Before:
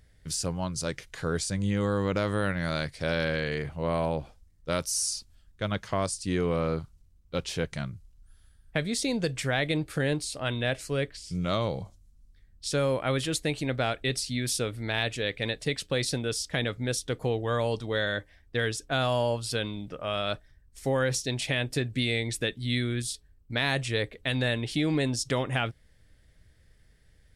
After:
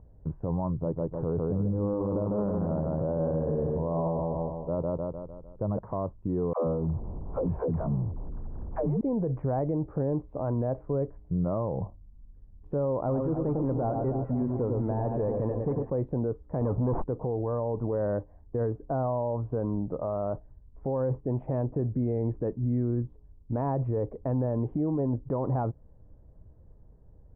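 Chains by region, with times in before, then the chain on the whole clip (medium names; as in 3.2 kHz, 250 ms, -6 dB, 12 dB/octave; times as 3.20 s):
0.71–5.79 s: low-pass 1.2 kHz + feedback delay 151 ms, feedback 48%, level -4 dB
6.53–9.01 s: jump at every zero crossing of -37 dBFS + phase dispersion lows, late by 140 ms, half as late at 330 Hz
13.00–15.90 s: hard clipper -25.5 dBFS + echo whose repeats swap between lows and highs 101 ms, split 1.3 kHz, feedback 74%, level -5.5 dB
16.61–17.04 s: waveshaping leveller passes 3 + sliding maximum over 5 samples
whole clip: elliptic low-pass 1 kHz, stop band 80 dB; peak limiter -29 dBFS; trim +7.5 dB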